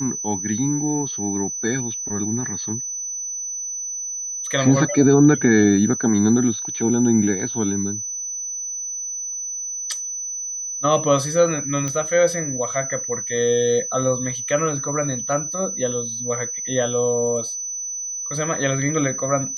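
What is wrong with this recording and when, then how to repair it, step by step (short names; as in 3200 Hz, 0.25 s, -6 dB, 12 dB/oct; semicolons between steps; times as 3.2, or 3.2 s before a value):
tone 6000 Hz -26 dBFS
11.88 pop -13 dBFS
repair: de-click; notch 6000 Hz, Q 30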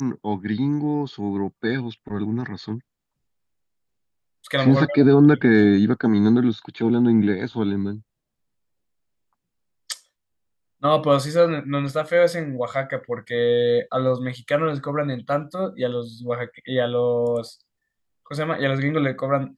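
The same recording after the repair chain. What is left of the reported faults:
none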